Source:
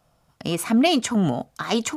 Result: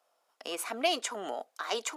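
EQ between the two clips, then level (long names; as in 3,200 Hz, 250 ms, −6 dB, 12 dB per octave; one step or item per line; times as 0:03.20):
high-pass filter 420 Hz 24 dB per octave
−7.0 dB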